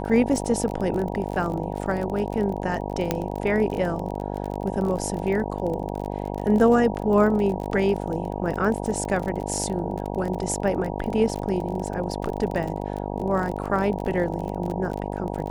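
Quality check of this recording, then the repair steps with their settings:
buzz 50 Hz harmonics 19 -30 dBFS
crackle 35 per s -29 dBFS
3.11 s: pop -8 dBFS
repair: de-click; de-hum 50 Hz, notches 19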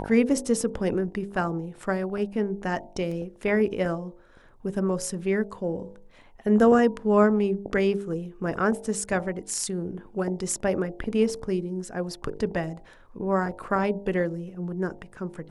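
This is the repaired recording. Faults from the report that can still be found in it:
3.11 s: pop

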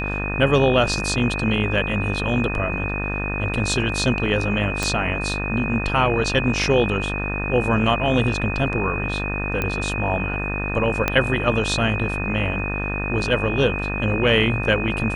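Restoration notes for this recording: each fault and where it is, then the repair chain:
buzz 50 Hz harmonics 37 -27 dBFS
whine 2.5 kHz -27 dBFS
4.83 s: pop -7 dBFS
9.62 s: pop -10 dBFS
11.08 s: pop -5 dBFS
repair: de-click; de-hum 50 Hz, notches 37; band-stop 2.5 kHz, Q 30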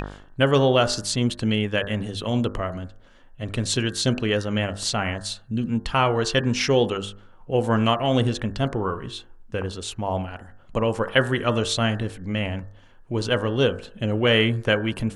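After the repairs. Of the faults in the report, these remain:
4.83 s: pop
11.08 s: pop

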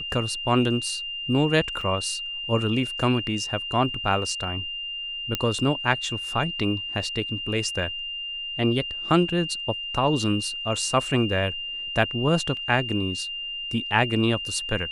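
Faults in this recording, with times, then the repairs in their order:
whine 2.8 kHz -30 dBFS
1.81 s: dropout 3.3 ms
5.35 s: pop -9 dBFS
12.57 s: dropout 2.1 ms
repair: de-click; band-stop 2.8 kHz, Q 30; interpolate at 1.81 s, 3.3 ms; interpolate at 12.57 s, 2.1 ms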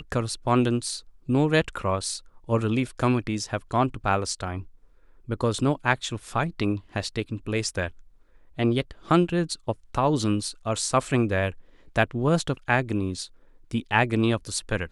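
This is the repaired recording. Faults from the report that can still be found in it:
nothing left

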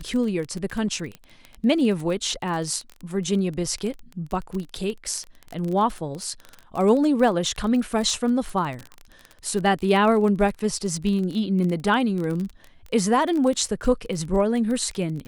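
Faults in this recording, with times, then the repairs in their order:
crackle 24 per s -27 dBFS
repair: de-click

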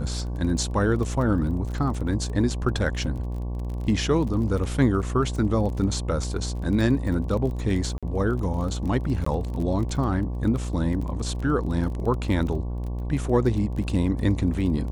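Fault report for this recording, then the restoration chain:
buzz 60 Hz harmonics 19 -29 dBFS
crackle 21 per s -31 dBFS
7.98–8.03 s: dropout 46 ms
9.25–9.26 s: dropout 14 ms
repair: de-click; de-hum 60 Hz, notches 19; interpolate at 7.98 s, 46 ms; interpolate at 9.25 s, 14 ms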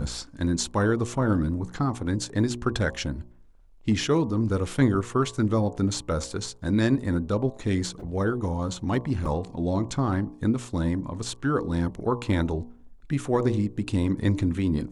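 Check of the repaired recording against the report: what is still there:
nothing left

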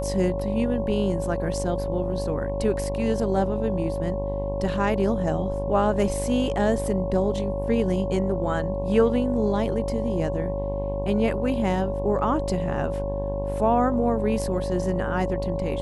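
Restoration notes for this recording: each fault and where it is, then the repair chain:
buzz 50 Hz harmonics 22 -30 dBFS
whine 560 Hz -28 dBFS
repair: de-hum 50 Hz, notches 22; band-stop 560 Hz, Q 30

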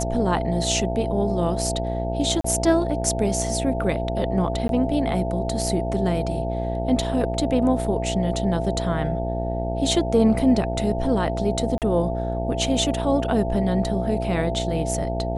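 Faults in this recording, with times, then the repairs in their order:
buzz 60 Hz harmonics 15 -27 dBFS
whine 670 Hz -28 dBFS
2.41–2.44 s: dropout 34 ms
4.68–4.69 s: dropout 12 ms
11.78–11.82 s: dropout 38 ms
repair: band-stop 670 Hz, Q 30; de-hum 60 Hz, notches 15; interpolate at 2.41 s, 34 ms; interpolate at 4.68 s, 12 ms; interpolate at 11.78 s, 38 ms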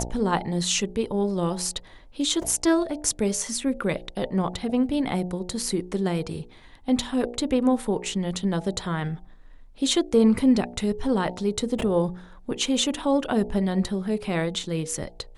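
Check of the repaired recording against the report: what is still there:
nothing left

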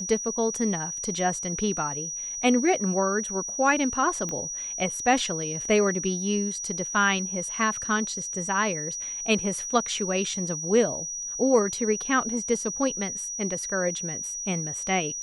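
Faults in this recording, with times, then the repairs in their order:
whine 5.8 kHz -31 dBFS
4.29 s: pop -18 dBFS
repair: de-click; band-stop 5.8 kHz, Q 30

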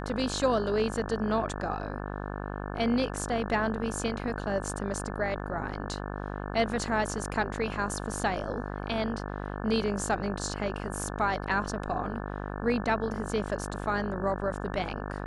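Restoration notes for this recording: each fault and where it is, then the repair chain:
buzz 50 Hz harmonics 35 -36 dBFS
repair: de-hum 50 Hz, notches 35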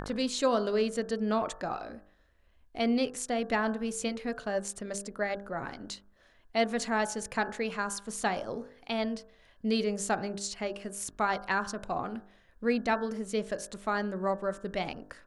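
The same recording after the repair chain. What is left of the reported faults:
nothing left

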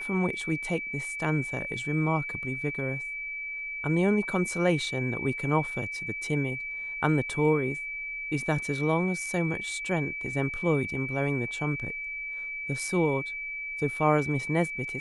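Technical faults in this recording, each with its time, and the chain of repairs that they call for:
whine 2.3 kHz -33 dBFS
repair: band-stop 2.3 kHz, Q 30

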